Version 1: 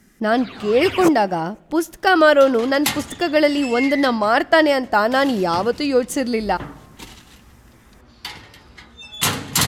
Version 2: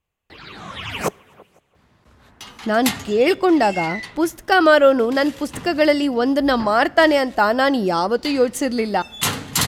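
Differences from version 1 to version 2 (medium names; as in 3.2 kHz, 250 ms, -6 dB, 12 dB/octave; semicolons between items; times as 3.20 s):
speech: entry +2.45 s; second sound: send off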